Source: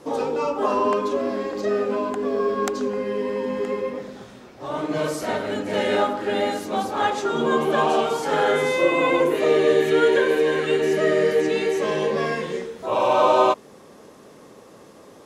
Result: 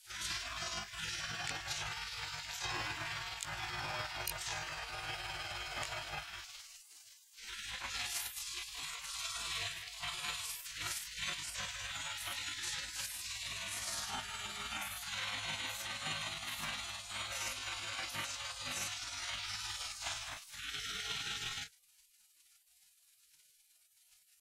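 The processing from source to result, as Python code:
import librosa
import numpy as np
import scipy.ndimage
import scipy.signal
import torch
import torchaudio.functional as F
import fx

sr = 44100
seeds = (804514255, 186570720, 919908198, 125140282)

y = fx.spec_gate(x, sr, threshold_db=-30, keep='weak')
y = fx.rider(y, sr, range_db=4, speed_s=0.5)
y = fx.stretch_grains(y, sr, factor=1.6, grain_ms=104.0)
y = F.gain(torch.from_numpy(y), 3.0).numpy()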